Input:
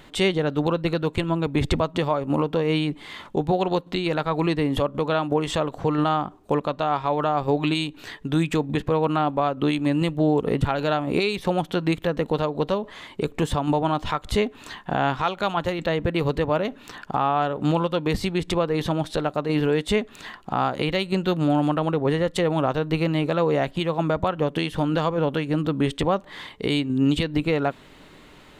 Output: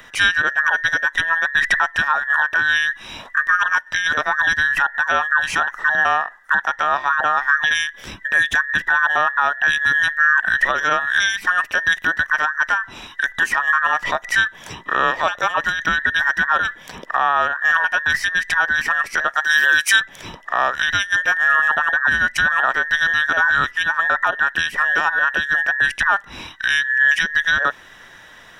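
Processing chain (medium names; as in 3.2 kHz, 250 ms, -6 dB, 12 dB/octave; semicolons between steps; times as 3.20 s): every band turned upside down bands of 2 kHz; 19.36–20.00 s: RIAA curve recording; trim +4.5 dB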